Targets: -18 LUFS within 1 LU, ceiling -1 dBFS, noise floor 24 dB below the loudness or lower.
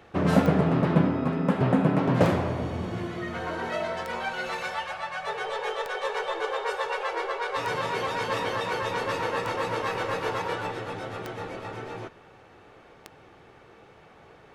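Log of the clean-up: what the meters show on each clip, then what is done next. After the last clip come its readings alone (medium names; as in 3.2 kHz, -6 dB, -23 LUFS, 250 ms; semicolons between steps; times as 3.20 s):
clicks found 8; loudness -28.0 LUFS; peak level -6.5 dBFS; loudness target -18.0 LUFS
-> de-click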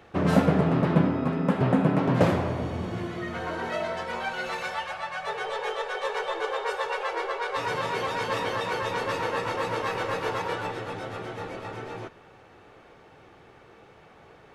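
clicks found 0; loudness -28.0 LUFS; peak level -6.5 dBFS; loudness target -18.0 LUFS
-> trim +10 dB; peak limiter -1 dBFS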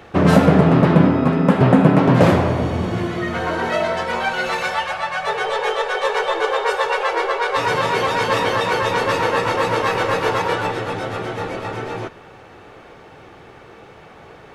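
loudness -18.0 LUFS; peak level -1.0 dBFS; noise floor -43 dBFS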